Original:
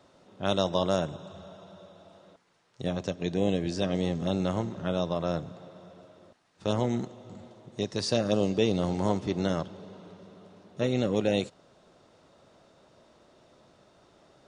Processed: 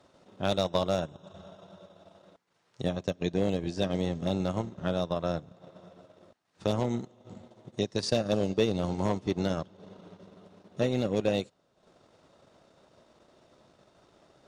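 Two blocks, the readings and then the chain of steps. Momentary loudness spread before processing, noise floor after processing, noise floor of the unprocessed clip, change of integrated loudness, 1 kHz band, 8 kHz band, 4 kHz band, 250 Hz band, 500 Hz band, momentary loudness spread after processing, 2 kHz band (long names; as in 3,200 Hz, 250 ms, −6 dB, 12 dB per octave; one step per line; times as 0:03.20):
20 LU, −71 dBFS, −62 dBFS, −1.0 dB, −1.5 dB, −2.0 dB, −1.5 dB, −2.0 dB, −1.0 dB, 19 LU, −1.0 dB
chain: asymmetric clip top −18 dBFS
transient designer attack +4 dB, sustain −10 dB
level −1.5 dB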